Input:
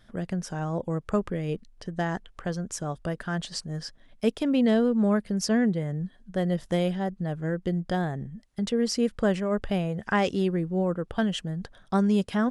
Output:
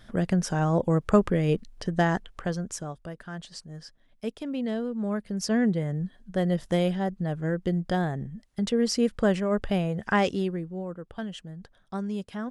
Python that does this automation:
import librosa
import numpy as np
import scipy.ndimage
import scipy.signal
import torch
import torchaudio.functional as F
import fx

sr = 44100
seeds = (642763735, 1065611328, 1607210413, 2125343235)

y = fx.gain(x, sr, db=fx.line((1.95, 6.0), (2.75, -1.0), (3.02, -8.0), (4.93, -8.0), (5.73, 1.0), (10.22, 1.0), (10.82, -9.0)))